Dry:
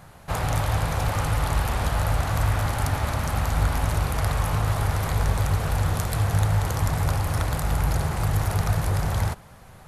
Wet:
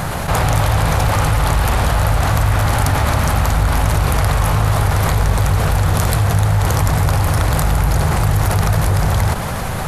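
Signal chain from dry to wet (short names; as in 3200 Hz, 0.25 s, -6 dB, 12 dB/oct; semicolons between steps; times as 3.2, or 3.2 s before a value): fast leveller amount 70%; gain +5 dB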